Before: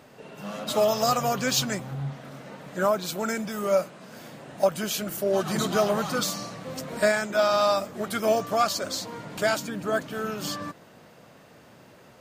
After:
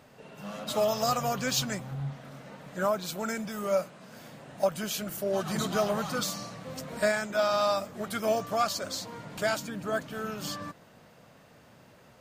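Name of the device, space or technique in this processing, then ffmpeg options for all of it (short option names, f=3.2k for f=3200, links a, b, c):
low shelf boost with a cut just above: -af "lowshelf=f=78:g=6.5,equalizer=f=350:t=o:w=0.64:g=-3.5,volume=-4dB"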